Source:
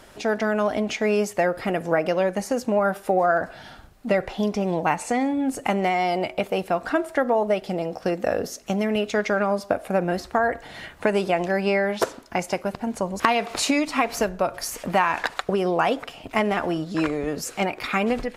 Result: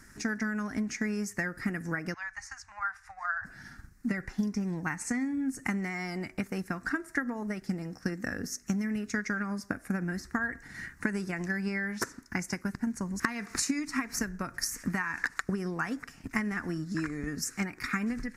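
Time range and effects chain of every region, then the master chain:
2.14–3.45 inverse Chebyshev band-stop 160–510 Hz + air absorption 100 m
whole clip: EQ curve 260 Hz 0 dB, 610 Hz -22 dB, 1800 Hz +3 dB, 3200 Hz -20 dB, 5600 Hz +2 dB, 13000 Hz -2 dB; compressor 2.5:1, threshold -28 dBFS; transient shaper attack +4 dB, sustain -2 dB; gain -2.5 dB

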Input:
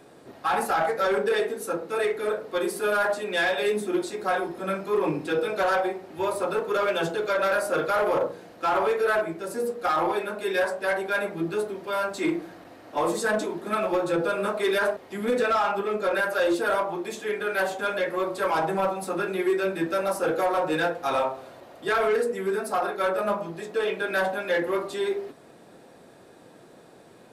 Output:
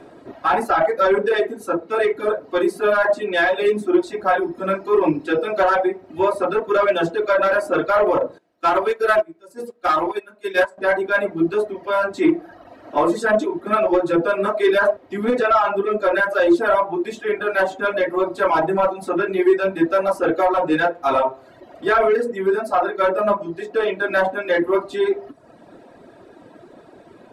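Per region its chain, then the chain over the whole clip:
8.38–10.78 high shelf 2900 Hz +9.5 dB + upward expander 2.5:1, over -32 dBFS
whole clip: reverb removal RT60 0.91 s; LPF 1800 Hz 6 dB/oct; comb 3.1 ms, depth 32%; gain +8.5 dB

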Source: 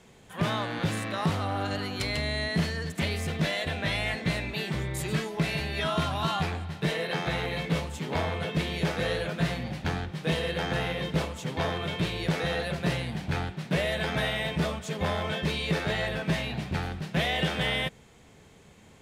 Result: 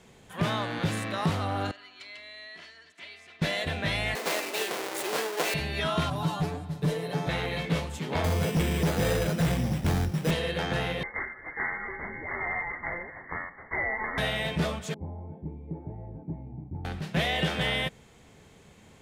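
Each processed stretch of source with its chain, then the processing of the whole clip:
1.71–3.42 LPF 2500 Hz + differentiator + comb 3 ms, depth 54%
4.15–5.54 half-waves squared off + HPF 350 Hz 24 dB/oct
6.1–7.29 bell 2300 Hz -12.5 dB 2.4 oct + hard clip -25.5 dBFS + comb 6.9 ms, depth 98%
8.24–10.31 low shelf 440 Hz +8.5 dB + careless resampling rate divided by 8×, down none, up hold + overloaded stage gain 21 dB
11.03–14.18 steep high-pass 450 Hz 72 dB/oct + inverted band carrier 2600 Hz
14.94–16.85 vocal tract filter u + resonant low shelf 160 Hz +8.5 dB, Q 1.5
whole clip: dry

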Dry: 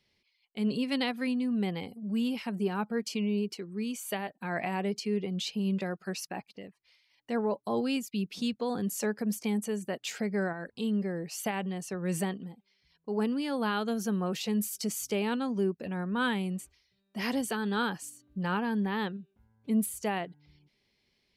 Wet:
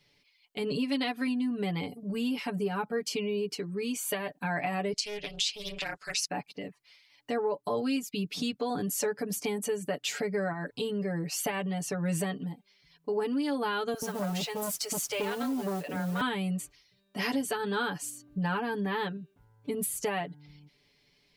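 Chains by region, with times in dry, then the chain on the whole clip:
4.93–6.26 weighting filter ITU-R 468 + AM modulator 210 Hz, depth 95% + Doppler distortion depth 0.27 ms
13.94–16.21 bands offset in time highs, lows 80 ms, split 530 Hz + modulation noise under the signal 20 dB + core saturation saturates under 740 Hz
whole clip: comb 6.9 ms, depth 92%; compressor 2.5:1, threshold -34 dBFS; gain +4 dB

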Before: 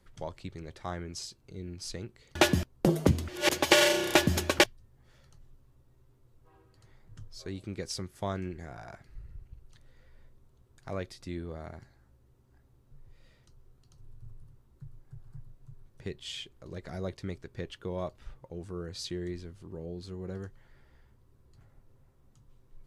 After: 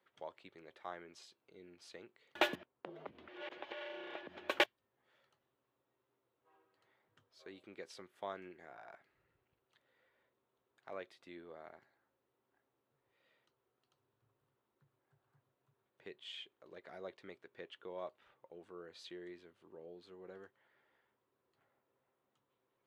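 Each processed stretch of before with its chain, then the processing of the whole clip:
2.55–4.49 compressor 10:1, threshold -32 dBFS + air absorption 240 m
whole clip: HPF 440 Hz 12 dB/oct; band shelf 7600 Hz -13.5 dB; gain -7 dB

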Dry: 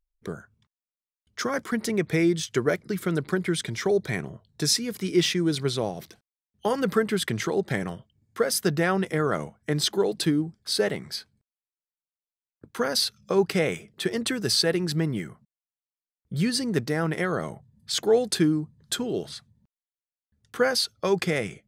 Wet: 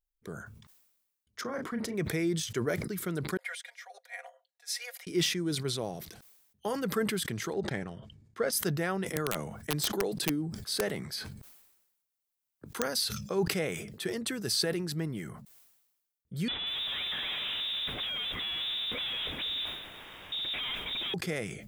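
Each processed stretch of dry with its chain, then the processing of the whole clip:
1.41–1.95 LPF 1400 Hz 6 dB/oct + notches 50/100/150/200/250/300/350/400/450 Hz + doubler 34 ms -8.5 dB
3.37–5.07 rippled Chebyshev high-pass 510 Hz, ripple 9 dB + comb 4.2 ms, depth 86% + upward expander 2.5:1, over -51 dBFS
7.53–8.53 transient shaper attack +1 dB, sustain -11 dB + air absorption 72 m
9.16–12.97 wrapped overs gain 13.5 dB + three-band squash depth 40%
16.48–21.14 infinite clipping + inverted band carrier 3700 Hz + lo-fi delay 0.189 s, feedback 35%, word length 8-bit, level -10.5 dB
whole clip: high shelf 9900 Hz +10.5 dB; sustainer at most 54 dB/s; gain -8.5 dB

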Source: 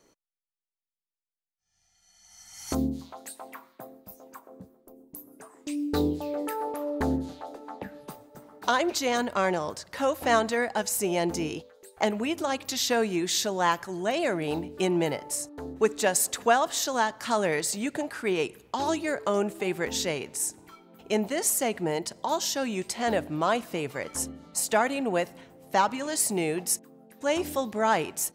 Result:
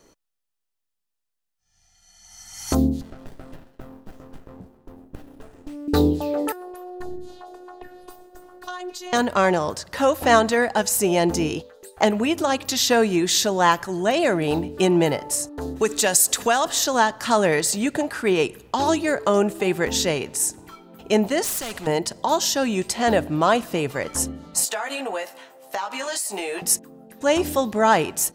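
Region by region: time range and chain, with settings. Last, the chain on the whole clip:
3.01–5.88 compressor 3:1, threshold -44 dBFS + running maximum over 33 samples
6.52–9.13 robotiser 361 Hz + compressor 2:1, threshold -47 dBFS
15.61–16.65 high shelf 2700 Hz +10.5 dB + compressor 2:1, threshold -26 dBFS
21.44–21.87 hard clip -24 dBFS + spectral compressor 2:1
24.65–26.62 HPF 620 Hz + doubler 15 ms -3 dB + compressor 10:1, threshold -30 dBFS
whole clip: low shelf 69 Hz +9 dB; notch 2200 Hz, Q 16; gain +7 dB

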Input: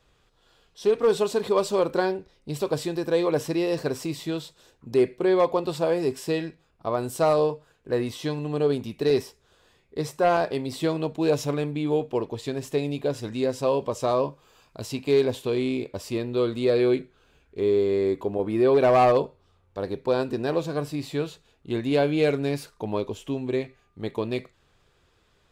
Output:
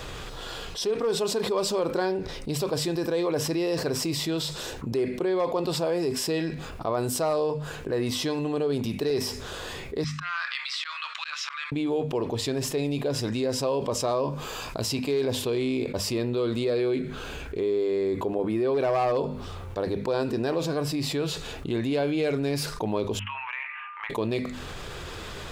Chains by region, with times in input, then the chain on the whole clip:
10.04–11.72 Chebyshev high-pass 1200 Hz, order 5 + air absorption 170 m + auto swell 0.293 s
23.19–24.1 Chebyshev band-pass 930–2800 Hz, order 4 + compressor 2.5:1, threshold -52 dBFS
whole clip: notches 50/100/150/200/250 Hz; dynamic EQ 5100 Hz, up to +6 dB, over -59 dBFS, Q 6.7; fast leveller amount 70%; gain -7 dB

